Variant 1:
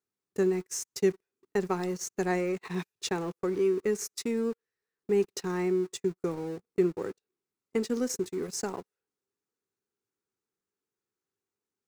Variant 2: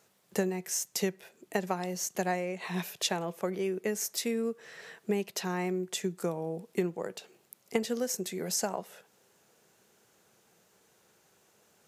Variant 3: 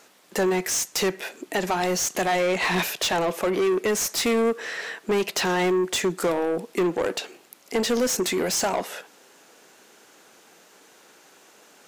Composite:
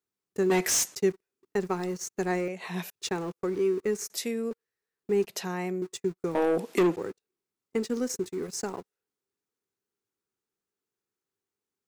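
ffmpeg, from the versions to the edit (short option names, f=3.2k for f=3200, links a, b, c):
-filter_complex "[2:a]asplit=2[a][b];[1:a]asplit=3[c][d][e];[0:a]asplit=6[f][g][h][i][j][k];[f]atrim=end=0.502[l];[a]atrim=start=0.498:end=0.952[m];[g]atrim=start=0.948:end=2.482[n];[c]atrim=start=2.478:end=2.902[o];[h]atrim=start=2.898:end=4.102[p];[d]atrim=start=4.098:end=4.512[q];[i]atrim=start=4.508:end=5.272[r];[e]atrim=start=5.268:end=5.822[s];[j]atrim=start=5.818:end=6.352[t];[b]atrim=start=6.348:end=6.962[u];[k]atrim=start=6.958[v];[l][m]acrossfade=d=0.004:c1=hsin:c2=hsin[w];[w][n]acrossfade=d=0.004:c1=hsin:c2=hsin[x];[x][o]acrossfade=d=0.004:c1=hsin:c2=hsin[y];[y][p]acrossfade=d=0.004:c1=hsin:c2=hsin[z];[z][q]acrossfade=d=0.004:c1=hsin:c2=hsin[aa];[aa][r]acrossfade=d=0.004:c1=hsin:c2=hsin[ab];[ab][s]acrossfade=d=0.004:c1=hsin:c2=hsin[ac];[ac][t]acrossfade=d=0.004:c1=hsin:c2=hsin[ad];[ad][u]acrossfade=d=0.004:c1=hsin:c2=hsin[ae];[ae][v]acrossfade=d=0.004:c1=hsin:c2=hsin"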